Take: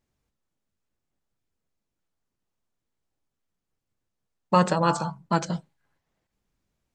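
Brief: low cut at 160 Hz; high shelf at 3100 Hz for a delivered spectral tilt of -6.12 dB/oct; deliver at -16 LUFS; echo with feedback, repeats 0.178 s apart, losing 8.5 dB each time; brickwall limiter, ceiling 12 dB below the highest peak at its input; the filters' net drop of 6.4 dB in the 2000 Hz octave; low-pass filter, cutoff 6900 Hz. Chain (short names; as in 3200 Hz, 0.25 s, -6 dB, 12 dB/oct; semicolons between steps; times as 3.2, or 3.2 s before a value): HPF 160 Hz; LPF 6900 Hz; bell 2000 Hz -8.5 dB; high shelf 3100 Hz -4 dB; limiter -20 dBFS; feedback echo 0.178 s, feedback 38%, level -8.5 dB; gain +16.5 dB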